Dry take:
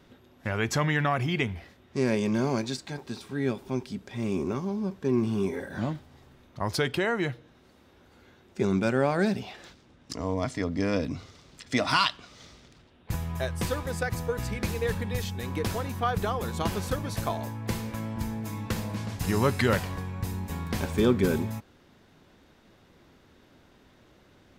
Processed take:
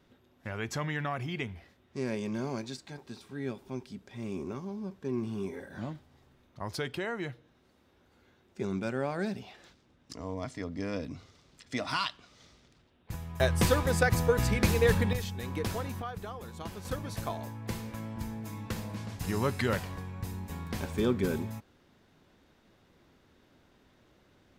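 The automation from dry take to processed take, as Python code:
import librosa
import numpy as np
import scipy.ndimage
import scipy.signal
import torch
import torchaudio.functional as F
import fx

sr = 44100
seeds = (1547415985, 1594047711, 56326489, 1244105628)

y = fx.gain(x, sr, db=fx.steps((0.0, -8.0), (13.4, 4.5), (15.13, -3.5), (16.02, -12.0), (16.85, -5.5)))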